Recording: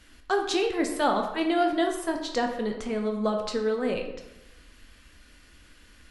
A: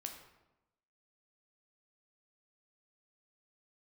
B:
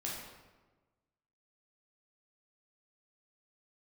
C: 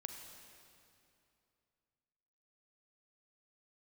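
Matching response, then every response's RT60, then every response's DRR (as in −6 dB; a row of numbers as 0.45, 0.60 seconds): A; 0.95, 1.3, 2.7 seconds; 3.0, −4.5, 4.5 decibels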